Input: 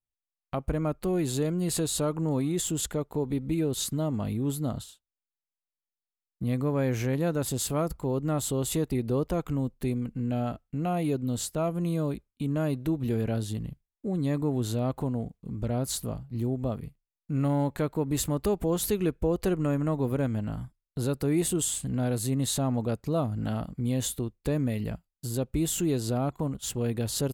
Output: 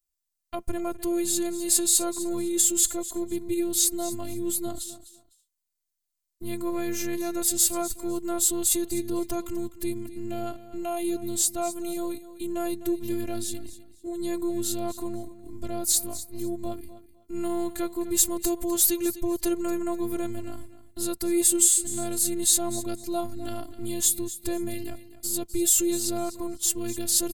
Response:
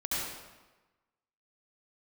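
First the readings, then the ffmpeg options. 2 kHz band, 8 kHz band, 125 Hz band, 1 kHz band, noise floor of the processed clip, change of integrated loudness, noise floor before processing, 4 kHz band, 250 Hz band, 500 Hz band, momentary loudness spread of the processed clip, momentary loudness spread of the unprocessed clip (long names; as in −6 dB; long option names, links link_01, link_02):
−1.0 dB, +11.5 dB, −16.0 dB, +0.5 dB, −82 dBFS, +3.5 dB, below −85 dBFS, +5.5 dB, −0.5 dB, −0.5 dB, 15 LU, 6 LU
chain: -af "afftfilt=real='hypot(re,im)*cos(PI*b)':imag='0':win_size=512:overlap=0.75,bass=frequency=250:gain=5,treble=frequency=4000:gain=14,aecho=1:1:253|506:0.178|0.0409,volume=1.5dB"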